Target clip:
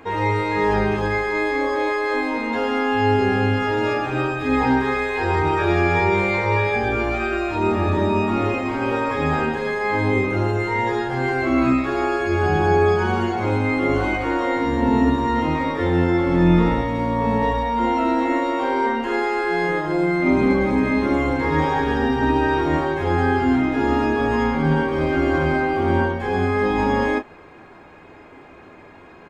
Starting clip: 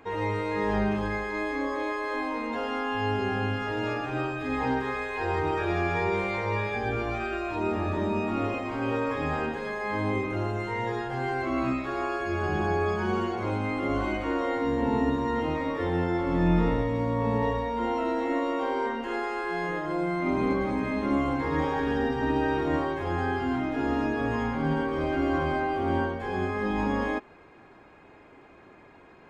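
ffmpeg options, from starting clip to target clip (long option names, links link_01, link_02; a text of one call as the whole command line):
ffmpeg -i in.wav -af "aecho=1:1:12|31:0.266|0.335,volume=7.5dB" out.wav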